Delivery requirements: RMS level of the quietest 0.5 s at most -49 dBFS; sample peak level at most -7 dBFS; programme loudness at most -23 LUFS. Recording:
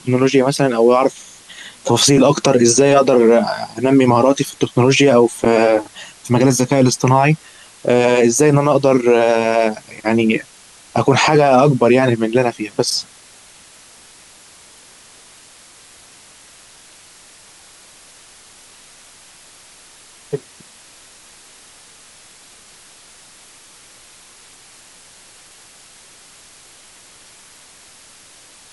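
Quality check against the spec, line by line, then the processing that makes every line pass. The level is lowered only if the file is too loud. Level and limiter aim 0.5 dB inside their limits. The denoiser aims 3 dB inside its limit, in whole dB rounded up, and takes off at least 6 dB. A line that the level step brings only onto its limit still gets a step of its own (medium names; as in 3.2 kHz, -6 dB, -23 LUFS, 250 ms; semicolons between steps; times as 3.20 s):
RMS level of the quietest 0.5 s -44 dBFS: fail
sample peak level -2.5 dBFS: fail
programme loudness -14.0 LUFS: fail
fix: trim -9.5 dB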